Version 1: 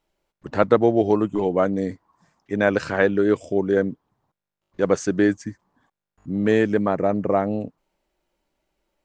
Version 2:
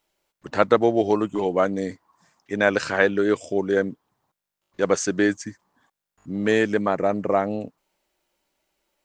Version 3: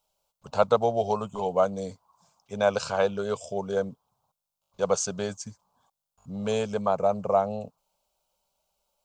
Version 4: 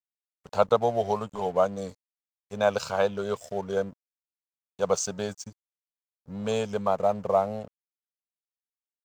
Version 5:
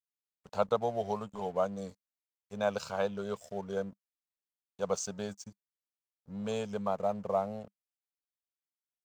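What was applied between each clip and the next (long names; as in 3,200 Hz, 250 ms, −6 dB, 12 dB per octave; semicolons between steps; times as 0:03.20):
spectral tilt +2 dB per octave; level +1 dB
phaser with its sweep stopped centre 770 Hz, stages 4
tape wow and flutter 28 cents; dead-zone distortion −48 dBFS
parametric band 200 Hz +4.5 dB 0.24 octaves; level −7.5 dB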